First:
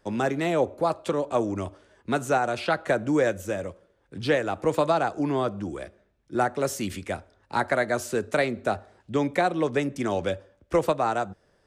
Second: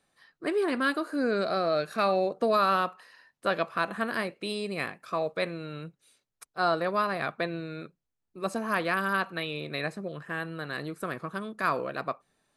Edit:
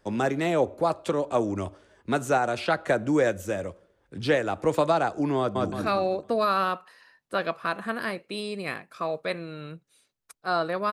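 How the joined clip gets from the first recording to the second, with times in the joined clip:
first
0:05.38–0:05.72: delay throw 170 ms, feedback 40%, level −1 dB
0:05.72: continue with second from 0:01.84

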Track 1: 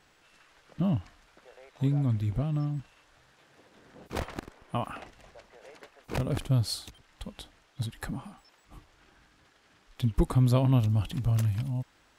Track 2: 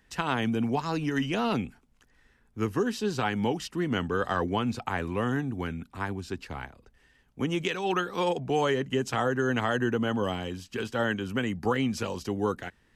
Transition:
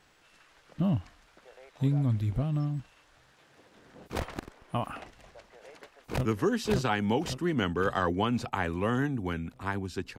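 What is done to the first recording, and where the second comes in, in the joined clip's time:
track 1
0:05.74–0:06.25: delay throw 560 ms, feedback 50%, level −1.5 dB
0:06.25: continue with track 2 from 0:02.59

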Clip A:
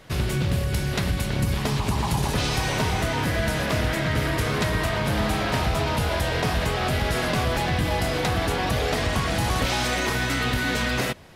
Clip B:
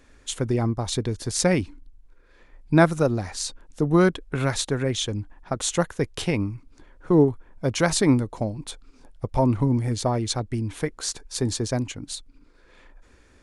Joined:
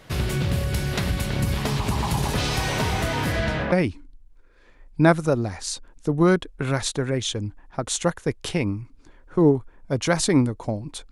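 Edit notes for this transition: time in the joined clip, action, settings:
clip A
0:03.32–0:03.72: low-pass filter 11,000 Hz → 1,500 Hz
0:03.72: continue with clip B from 0:01.45

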